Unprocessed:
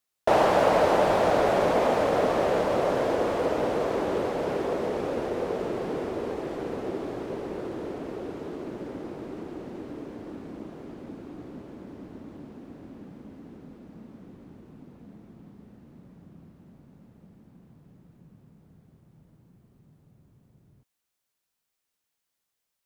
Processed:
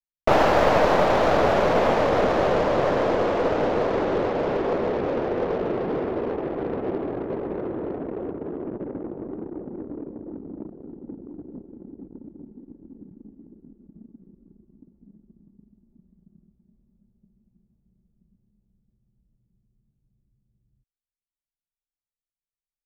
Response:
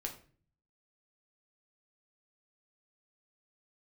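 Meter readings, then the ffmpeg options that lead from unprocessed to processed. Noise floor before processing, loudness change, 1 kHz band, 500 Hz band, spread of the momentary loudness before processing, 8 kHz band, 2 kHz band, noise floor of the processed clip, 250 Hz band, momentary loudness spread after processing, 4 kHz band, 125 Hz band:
-82 dBFS, +3.0 dB, +3.0 dB, +3.0 dB, 22 LU, n/a, +4.5 dB, under -85 dBFS, +3.5 dB, 21 LU, +3.0 dB, +5.0 dB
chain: -af "aeval=exprs='clip(val(0),-1,0.0473)':c=same,anlmdn=2.51,equalizer=f=8.9k:t=o:w=0.38:g=-11,volume=5dB"

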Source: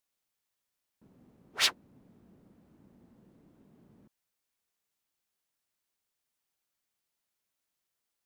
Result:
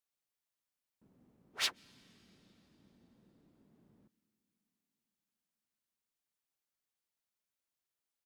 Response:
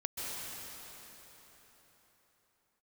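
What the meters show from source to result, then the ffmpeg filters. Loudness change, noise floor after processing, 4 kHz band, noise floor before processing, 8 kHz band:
-7.0 dB, under -85 dBFS, -7.0 dB, -85 dBFS, -7.0 dB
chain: -filter_complex "[0:a]asplit=2[a][b];[b]firequalizer=gain_entry='entry(130,0);entry(200,9);entry(560,-2)':delay=0.05:min_phase=1[c];[1:a]atrim=start_sample=2205[d];[c][d]afir=irnorm=-1:irlink=0,volume=-25.5dB[e];[a][e]amix=inputs=2:normalize=0,volume=-7.5dB"

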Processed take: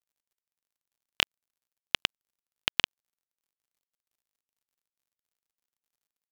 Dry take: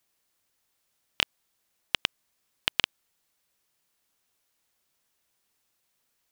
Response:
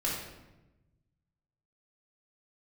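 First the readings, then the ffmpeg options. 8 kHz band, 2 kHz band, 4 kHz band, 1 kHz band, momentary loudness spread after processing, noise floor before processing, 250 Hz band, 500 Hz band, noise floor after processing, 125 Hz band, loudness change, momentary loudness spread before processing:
0.0 dB, 0.0 dB, 0.0 dB, 0.0 dB, 5 LU, -76 dBFS, 0.0 dB, 0.0 dB, under -85 dBFS, 0.0 dB, 0.0 dB, 5 LU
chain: -af "acrusher=bits=8:dc=4:mix=0:aa=0.000001"

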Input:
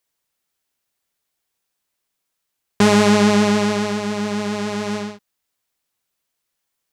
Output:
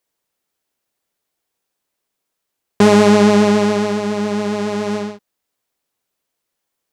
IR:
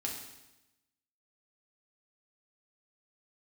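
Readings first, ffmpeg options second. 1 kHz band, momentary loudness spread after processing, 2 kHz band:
+2.5 dB, 12 LU, 0.0 dB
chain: -af "equalizer=f=420:w=0.52:g=6.5,volume=-1dB"

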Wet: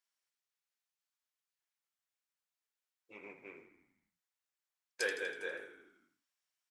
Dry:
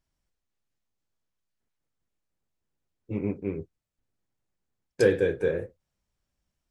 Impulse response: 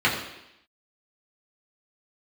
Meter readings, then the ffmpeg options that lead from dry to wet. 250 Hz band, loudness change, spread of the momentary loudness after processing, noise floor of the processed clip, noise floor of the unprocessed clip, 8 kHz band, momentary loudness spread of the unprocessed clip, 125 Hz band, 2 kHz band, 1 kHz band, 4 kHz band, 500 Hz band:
-25.0 dB, -12.0 dB, 20 LU, under -85 dBFS, -83 dBFS, -2.0 dB, 14 LU, -37.5 dB, -3.0 dB, -7.5 dB, -2.0 dB, -18.5 dB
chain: -filter_complex "[0:a]highpass=1.2k,asplit=8[a][b][c][d][e][f][g][h];[b]adelay=81,afreqshift=-32,volume=-10dB[i];[c]adelay=162,afreqshift=-64,volume=-14.7dB[j];[d]adelay=243,afreqshift=-96,volume=-19.5dB[k];[e]adelay=324,afreqshift=-128,volume=-24.2dB[l];[f]adelay=405,afreqshift=-160,volume=-28.9dB[m];[g]adelay=486,afreqshift=-192,volume=-33.7dB[n];[h]adelay=567,afreqshift=-224,volume=-38.4dB[o];[a][i][j][k][l][m][n][o]amix=inputs=8:normalize=0,volume=-2.5dB"

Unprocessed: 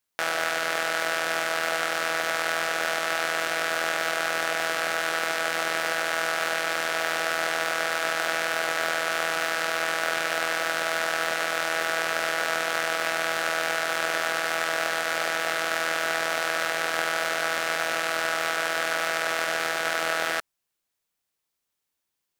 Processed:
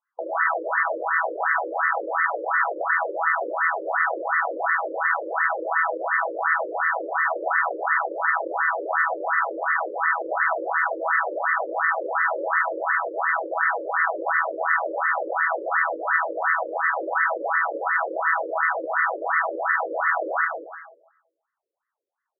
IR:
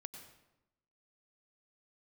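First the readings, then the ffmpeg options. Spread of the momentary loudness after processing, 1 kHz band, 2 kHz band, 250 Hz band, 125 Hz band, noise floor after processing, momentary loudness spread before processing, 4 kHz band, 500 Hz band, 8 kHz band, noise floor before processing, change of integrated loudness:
2 LU, +5.5 dB, +2.5 dB, 0.0 dB, under -30 dB, -82 dBFS, 0 LU, under -40 dB, +1.5 dB, under -40 dB, -82 dBFS, +2.5 dB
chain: -filter_complex "[0:a]aecho=1:1:192:0.562,asplit=2[a][b];[1:a]atrim=start_sample=2205,adelay=48[c];[b][c]afir=irnorm=-1:irlink=0,volume=5.5dB[d];[a][d]amix=inputs=2:normalize=0,afftfilt=real='re*between(b*sr/1024,410*pow(1500/410,0.5+0.5*sin(2*PI*2.8*pts/sr))/1.41,410*pow(1500/410,0.5+0.5*sin(2*PI*2.8*pts/sr))*1.41)':imag='im*between(b*sr/1024,410*pow(1500/410,0.5+0.5*sin(2*PI*2.8*pts/sr))/1.41,410*pow(1500/410,0.5+0.5*sin(2*PI*2.8*pts/sr))*1.41)':win_size=1024:overlap=0.75,volume=6.5dB"

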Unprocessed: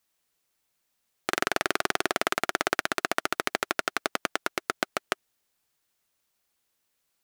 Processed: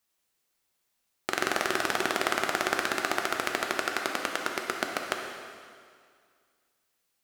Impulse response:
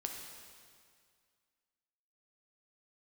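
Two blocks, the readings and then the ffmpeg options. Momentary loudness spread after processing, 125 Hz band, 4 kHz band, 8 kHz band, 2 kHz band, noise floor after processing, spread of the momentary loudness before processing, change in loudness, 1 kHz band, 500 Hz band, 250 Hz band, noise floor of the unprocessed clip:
9 LU, -1.0 dB, -0.5 dB, -0.5 dB, 0.0 dB, -77 dBFS, 5 LU, -0.5 dB, 0.0 dB, 0.0 dB, +0.5 dB, -77 dBFS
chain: -filter_complex "[1:a]atrim=start_sample=2205[a];[0:a][a]afir=irnorm=-1:irlink=0"

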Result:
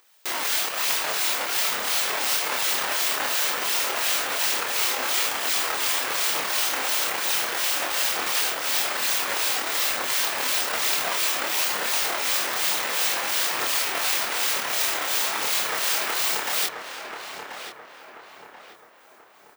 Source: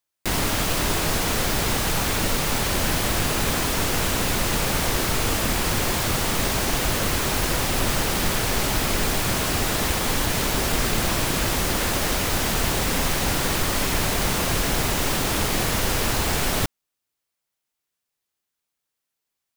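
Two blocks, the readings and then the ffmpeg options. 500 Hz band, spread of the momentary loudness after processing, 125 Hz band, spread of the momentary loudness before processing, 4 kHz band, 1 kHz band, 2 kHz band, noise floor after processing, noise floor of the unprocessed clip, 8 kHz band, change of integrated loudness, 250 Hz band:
-6.5 dB, 1 LU, under -25 dB, 0 LU, +1.0 dB, -2.0 dB, 0.0 dB, -51 dBFS, -83 dBFS, -0.5 dB, 0.0 dB, -16.5 dB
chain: -filter_complex "[0:a]asplit=2[a][b];[b]acrusher=bits=4:dc=4:mix=0:aa=0.000001,volume=-9.5dB[c];[a][c]amix=inputs=2:normalize=0,acrossover=split=2100[d][e];[d]aeval=exprs='val(0)*(1-0.7/2+0.7/2*cos(2*PI*2.8*n/s))':c=same[f];[e]aeval=exprs='val(0)*(1-0.7/2-0.7/2*cos(2*PI*2.8*n/s))':c=same[g];[f][g]amix=inputs=2:normalize=0,crystalizer=i=7.5:c=0,highshelf=f=4.6k:g=-9,acompressor=mode=upward:threshold=-31dB:ratio=2.5,aeval=exprs='max(val(0),0)':c=same,equalizer=f=13k:t=o:w=1.8:g=-9,aphaser=in_gain=1:out_gain=1:delay=4.1:decay=0.35:speed=1.1:type=triangular,highpass=530,asplit=2[h][i];[i]adelay=27,volume=-3dB[j];[h][j]amix=inputs=2:normalize=0,asplit=2[k][l];[l]adelay=1034,lowpass=f=2k:p=1,volume=-5.5dB,asplit=2[m][n];[n]adelay=1034,lowpass=f=2k:p=1,volume=0.46,asplit=2[o][p];[p]adelay=1034,lowpass=f=2k:p=1,volume=0.46,asplit=2[q][r];[r]adelay=1034,lowpass=f=2k:p=1,volume=0.46,asplit=2[s][t];[t]adelay=1034,lowpass=f=2k:p=1,volume=0.46,asplit=2[u][v];[v]adelay=1034,lowpass=f=2k:p=1,volume=0.46[w];[k][m][o][q][s][u][w]amix=inputs=7:normalize=0,volume=-2.5dB"

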